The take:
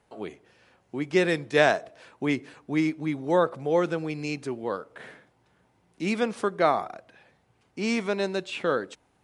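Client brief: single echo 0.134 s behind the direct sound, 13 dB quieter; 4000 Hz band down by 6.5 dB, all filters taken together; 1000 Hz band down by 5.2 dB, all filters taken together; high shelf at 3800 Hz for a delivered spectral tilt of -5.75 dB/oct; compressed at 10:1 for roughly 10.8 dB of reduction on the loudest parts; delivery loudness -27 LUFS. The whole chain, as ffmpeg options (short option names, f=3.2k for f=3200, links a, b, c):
-af "equalizer=f=1k:t=o:g=-7,highshelf=f=3.8k:g=-5.5,equalizer=f=4k:t=o:g=-4.5,acompressor=threshold=-28dB:ratio=10,aecho=1:1:134:0.224,volume=8dB"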